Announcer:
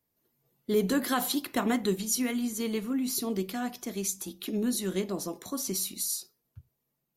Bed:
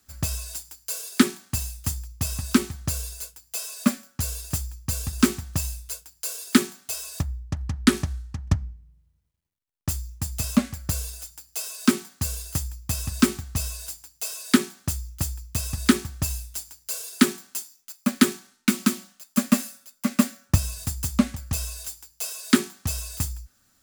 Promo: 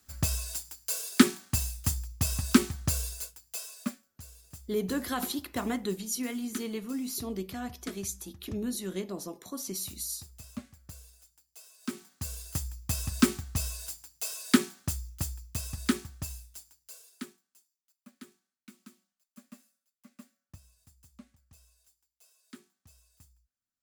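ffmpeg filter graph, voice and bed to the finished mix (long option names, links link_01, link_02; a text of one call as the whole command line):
ffmpeg -i stem1.wav -i stem2.wav -filter_complex "[0:a]adelay=4000,volume=-4.5dB[link_01];[1:a]volume=15dB,afade=type=out:start_time=3.06:duration=0.97:silence=0.112202,afade=type=in:start_time=11.8:duration=1.02:silence=0.149624,afade=type=out:start_time=14.58:duration=2.83:silence=0.0421697[link_02];[link_01][link_02]amix=inputs=2:normalize=0" out.wav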